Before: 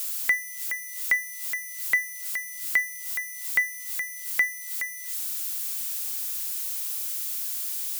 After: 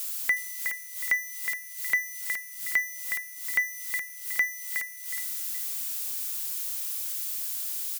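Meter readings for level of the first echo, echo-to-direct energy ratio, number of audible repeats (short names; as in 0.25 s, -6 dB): -7.0 dB, -6.5 dB, 2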